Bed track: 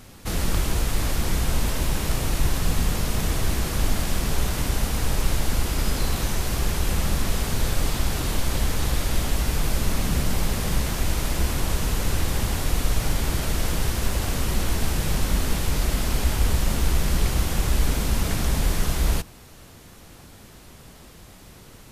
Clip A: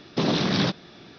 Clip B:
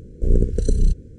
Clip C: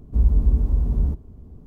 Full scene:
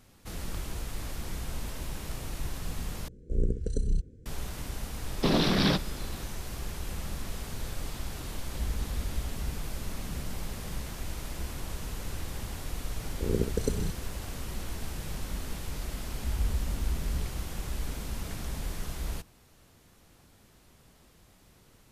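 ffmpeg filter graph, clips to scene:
ffmpeg -i bed.wav -i cue0.wav -i cue1.wav -i cue2.wav -filter_complex "[2:a]asplit=2[link_01][link_02];[3:a]asplit=2[link_03][link_04];[0:a]volume=-13dB[link_05];[link_03]highpass=51[link_06];[link_02]highpass=frequency=180:poles=1[link_07];[link_04]acompressor=threshold=-16dB:ratio=6:attack=3.2:release=140:knee=1:detection=peak[link_08];[link_05]asplit=2[link_09][link_10];[link_09]atrim=end=3.084[link_11];[link_01]atrim=end=1.18,asetpts=PTS-STARTPTS,volume=-10.5dB[link_12];[link_10]atrim=start=4.256[link_13];[1:a]atrim=end=1.18,asetpts=PTS-STARTPTS,volume=-2dB,afade=type=in:duration=0.004:curve=hsin,afade=type=out:start_time=1.176:duration=0.004:curve=hsin,adelay=5060[link_14];[link_06]atrim=end=1.66,asetpts=PTS-STARTPTS,volume=-14dB,afade=type=in:duration=0.004:curve=hsin,afade=type=out:start_time=1.656:duration=0.004:curve=hsin,adelay=8440[link_15];[link_07]atrim=end=1.18,asetpts=PTS-STARTPTS,volume=-3.5dB,afade=type=in:duration=0.004:curve=hsin,afade=type=out:start_time=1.176:duration=0.004:curve=hsin,adelay=12990[link_16];[link_08]atrim=end=1.66,asetpts=PTS-STARTPTS,volume=-12dB,afade=type=in:duration=0.004:curve=hsin,afade=type=out:start_time=1.656:duration=0.004:curve=hsin,adelay=16090[link_17];[link_11][link_12]acrossfade=duration=0.004:curve1=hsin:curve2=hsin[link_18];[link_18][link_13]acrossfade=duration=0.004:curve1=hsin:curve2=hsin[link_19];[link_19][link_14][link_15][link_16][link_17]amix=inputs=5:normalize=0" out.wav

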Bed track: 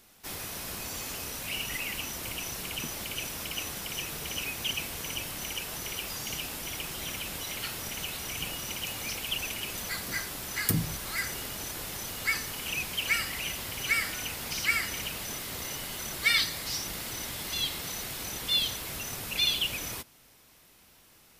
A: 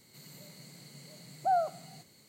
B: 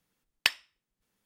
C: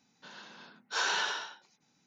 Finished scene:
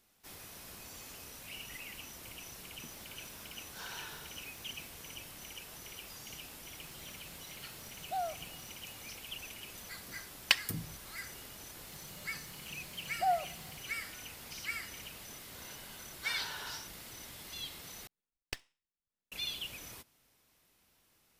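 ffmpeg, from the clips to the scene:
ffmpeg -i bed.wav -i cue0.wav -i cue1.wav -i cue2.wav -filter_complex "[3:a]asplit=2[link_01][link_02];[1:a]asplit=2[link_03][link_04];[2:a]asplit=2[link_05][link_06];[0:a]volume=-12dB[link_07];[link_01]aeval=exprs='val(0)+0.5*0.00891*sgn(val(0))':channel_layout=same[link_08];[link_05]aecho=1:1:3.7:0.68[link_09];[link_04]aecho=1:1:5.5:0.53[link_10];[link_02]acompressor=threshold=-33dB:ratio=6:attack=3.2:release=140:knee=1:detection=peak[link_11];[link_06]aeval=exprs='max(val(0),0)':channel_layout=same[link_12];[link_07]asplit=2[link_13][link_14];[link_13]atrim=end=18.074[link_15];[link_12]atrim=end=1.25,asetpts=PTS-STARTPTS,volume=-13dB[link_16];[link_14]atrim=start=19.316[link_17];[link_08]atrim=end=2.06,asetpts=PTS-STARTPTS,volume=-17dB,afade=type=in:duration=0.004:curve=hsin,afade=type=out:start_time=2.056:duration=0.004:curve=hsin,adelay=2830[link_18];[link_03]atrim=end=2.28,asetpts=PTS-STARTPTS,volume=-9dB,afade=type=in:duration=0.004:curve=hsin,afade=type=out:start_time=2.276:duration=0.004:curve=hsin,adelay=293706S[link_19];[link_09]atrim=end=1.25,asetpts=PTS-STARTPTS,volume=-2.5dB,afade=type=in:duration=0.004:curve=hsin,afade=type=out:start_time=1.246:duration=0.004:curve=hsin,adelay=10050[link_20];[link_10]atrim=end=2.28,asetpts=PTS-STARTPTS,volume=-5.5dB,afade=type=in:duration=0.004:curve=hsin,afade=type=out:start_time=2.276:duration=0.004:curve=hsin,adelay=11760[link_21];[link_11]atrim=end=2.06,asetpts=PTS-STARTPTS,volume=-6.5dB,afade=type=in:duration=0.004:curve=hsin,afade=type=out:start_time=2.056:duration=0.004:curve=hsin,adelay=15320[link_22];[link_15][link_16]acrossfade=duration=0.004:curve1=hsin:curve2=hsin[link_23];[link_23][link_17]acrossfade=duration=0.004:curve1=hsin:curve2=hsin[link_24];[link_24][link_18][link_19][link_20][link_21][link_22]amix=inputs=6:normalize=0" out.wav

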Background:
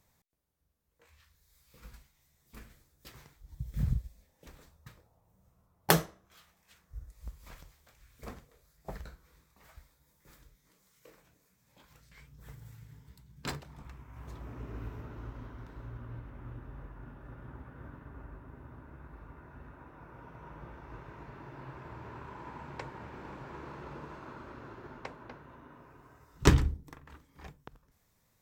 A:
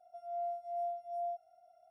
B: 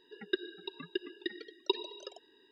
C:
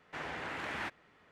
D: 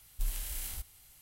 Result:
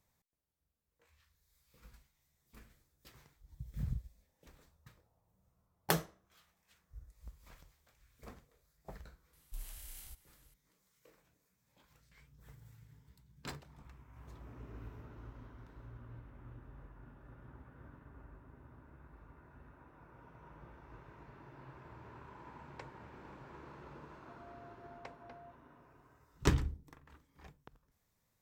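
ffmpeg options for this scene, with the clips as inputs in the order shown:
ffmpeg -i bed.wav -i cue0.wav -i cue1.wav -i cue2.wav -i cue3.wav -filter_complex "[0:a]volume=-7.5dB[link_01];[1:a]alimiter=level_in=16.5dB:limit=-24dB:level=0:latency=1:release=71,volume=-16.5dB[link_02];[4:a]atrim=end=1.21,asetpts=PTS-STARTPTS,volume=-11.5dB,afade=type=in:duration=0.004:curve=hsin,afade=type=out:start_time=1.206:duration=0.004:curve=hsin,adelay=9330[link_03];[link_02]atrim=end=1.9,asetpts=PTS-STARTPTS,volume=-12dB,afade=type=in:duration=0.004:curve=hsin,afade=type=out:start_time=1.896:duration=0.004:curve=hsin,adelay=24150[link_04];[link_01][link_03][link_04]amix=inputs=3:normalize=0" out.wav

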